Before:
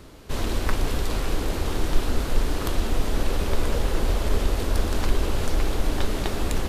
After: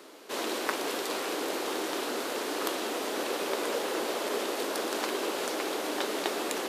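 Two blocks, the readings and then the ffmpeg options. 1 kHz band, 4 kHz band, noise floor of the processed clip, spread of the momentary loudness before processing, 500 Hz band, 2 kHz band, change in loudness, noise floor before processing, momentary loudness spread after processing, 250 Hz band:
0.0 dB, 0.0 dB, -35 dBFS, 2 LU, -0.5 dB, 0.0 dB, -4.0 dB, -30 dBFS, 1 LU, -5.0 dB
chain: -af "highpass=f=310:w=0.5412,highpass=f=310:w=1.3066"

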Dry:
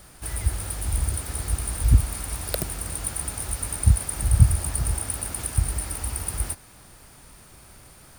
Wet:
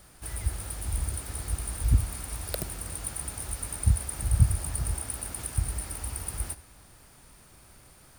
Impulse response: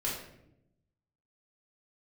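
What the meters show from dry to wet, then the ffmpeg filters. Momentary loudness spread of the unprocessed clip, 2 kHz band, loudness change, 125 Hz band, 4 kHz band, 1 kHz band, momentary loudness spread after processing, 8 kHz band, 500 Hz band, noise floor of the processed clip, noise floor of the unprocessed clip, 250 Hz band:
9 LU, -5.5 dB, -5.5 dB, -5.5 dB, -5.5 dB, -5.5 dB, 9 LU, -5.5 dB, -5.5 dB, -55 dBFS, -50 dBFS, -5.5 dB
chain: -filter_complex "[0:a]asplit=2[a][b];[1:a]atrim=start_sample=2205,asetrate=38367,aresample=44100,adelay=46[c];[b][c]afir=irnorm=-1:irlink=0,volume=-24dB[d];[a][d]amix=inputs=2:normalize=0,volume=-5.5dB"

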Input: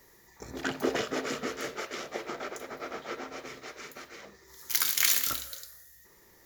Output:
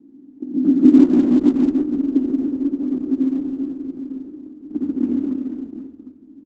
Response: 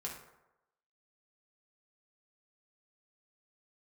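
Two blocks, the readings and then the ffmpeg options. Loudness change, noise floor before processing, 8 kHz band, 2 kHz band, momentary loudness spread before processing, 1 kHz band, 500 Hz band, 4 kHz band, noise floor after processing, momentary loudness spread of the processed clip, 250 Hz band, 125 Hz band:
+12.0 dB, -59 dBFS, under -20 dB, under -10 dB, 22 LU, n/a, +7.5 dB, under -15 dB, -46 dBFS, 19 LU, +26.5 dB, +14.0 dB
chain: -filter_complex "[0:a]aeval=exprs='if(lt(val(0),0),0.251*val(0),val(0))':c=same,aeval=exprs='val(0)+0.00112*(sin(2*PI*60*n/s)+sin(2*PI*2*60*n/s)/2+sin(2*PI*3*60*n/s)/3+sin(2*PI*4*60*n/s)/4+sin(2*PI*5*60*n/s)/5)':c=same,afreqshift=-82,asplit=2[a][b];[b]aeval=exprs='val(0)*gte(abs(val(0)),0.0178)':c=same,volume=-10.5dB[c];[a][c]amix=inputs=2:normalize=0,asuperpass=centerf=270:order=4:qfactor=4.3,aecho=1:1:84|130|141|490|508|756:0.531|0.119|0.562|0.376|0.178|0.188,alimiter=level_in=30dB:limit=-1dB:release=50:level=0:latency=1,volume=-1dB" -ar 48000 -c:a libopus -b:a 12k

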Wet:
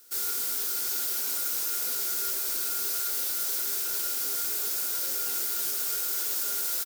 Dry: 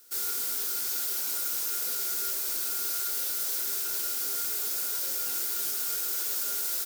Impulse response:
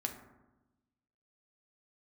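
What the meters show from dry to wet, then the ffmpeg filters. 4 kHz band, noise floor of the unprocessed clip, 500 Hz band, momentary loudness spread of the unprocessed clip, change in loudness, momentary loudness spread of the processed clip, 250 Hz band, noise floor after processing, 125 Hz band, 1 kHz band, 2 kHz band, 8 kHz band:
+1.0 dB, -31 dBFS, +1.5 dB, 0 LU, +1.0 dB, 0 LU, +1.5 dB, -30 dBFS, n/a, +1.5 dB, +1.5 dB, +1.0 dB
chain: -filter_complex "[0:a]asplit=2[a][b];[b]adelay=641.4,volume=-8dB,highshelf=f=4k:g=-14.4[c];[a][c]amix=inputs=2:normalize=0,volume=1dB"

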